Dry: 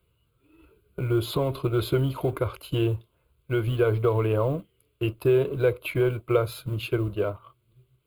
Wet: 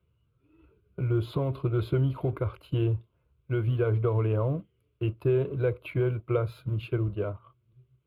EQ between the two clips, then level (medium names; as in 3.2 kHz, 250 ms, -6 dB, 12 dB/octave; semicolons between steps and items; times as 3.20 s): high-pass 59 Hz; tone controls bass +7 dB, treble -14 dB; -6.0 dB